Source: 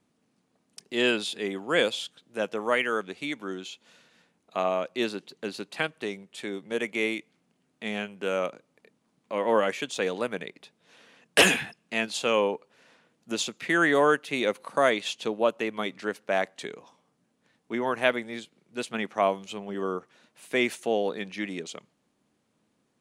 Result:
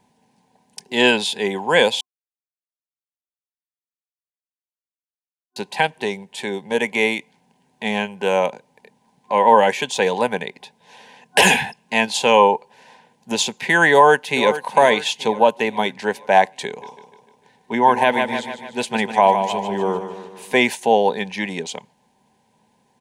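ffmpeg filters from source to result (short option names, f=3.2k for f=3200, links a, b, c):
-filter_complex "[0:a]asplit=2[a][b];[b]afade=t=in:st=13.92:d=0.01,afade=t=out:st=14.62:d=0.01,aecho=0:1:440|880|1320|1760|2200:0.211349|0.105674|0.0528372|0.0264186|0.0132093[c];[a][c]amix=inputs=2:normalize=0,asettb=1/sr,asplit=3[d][e][f];[d]atrim=end=16.674[g];[e]atrim=start=16.67:end=20.56,asetpts=PTS-STARTPTS,afade=t=in:d=0.004:c=qsin,afade=t=out:st=3.886:d=0.004:c=qsin,aecho=1:1:150|300|450|600|750|900:0.316|0.171|0.0922|0.0498|0.0269|0.0145,atrim=end_sample=171549[h];[f]atrim=start=20.556[i];[g][h]acrossfade=d=0.004:c1=hsin:c2=qsin[j];[j][i]acrossfade=d=0.004:c1=qsin:c2=hsin,asplit=3[k][l][m];[k]atrim=end=2.01,asetpts=PTS-STARTPTS,afade=t=out:st=2.006:d=0.004:c=hsin[n];[l]atrim=start=2.01:end=5.56,asetpts=PTS-STARTPTS,volume=0[o];[m]atrim=start=5.56,asetpts=PTS-STARTPTS,afade=t=in:d=0.004:c=hsin[p];[n][o][p]concat=n=3:v=0:a=1,superequalizer=6b=0.398:9b=3.16:10b=0.282,alimiter=level_in=10.5dB:limit=-1dB:release=50:level=0:latency=1,volume=-1dB"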